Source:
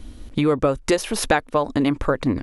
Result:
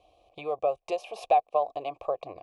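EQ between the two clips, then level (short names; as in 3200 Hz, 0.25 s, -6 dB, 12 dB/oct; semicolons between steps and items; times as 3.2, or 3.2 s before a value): vowel filter a; fixed phaser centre 600 Hz, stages 4; +5.0 dB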